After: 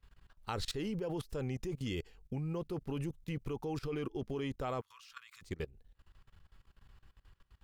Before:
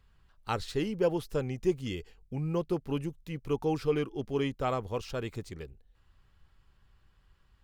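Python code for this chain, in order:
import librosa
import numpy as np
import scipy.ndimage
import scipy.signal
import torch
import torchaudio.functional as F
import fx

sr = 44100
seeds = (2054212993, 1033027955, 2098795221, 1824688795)

y = fx.ellip_highpass(x, sr, hz=1100.0, order=4, stop_db=40, at=(4.8, 5.41), fade=0.02)
y = fx.level_steps(y, sr, step_db=21)
y = y * 10.0 ** (5.5 / 20.0)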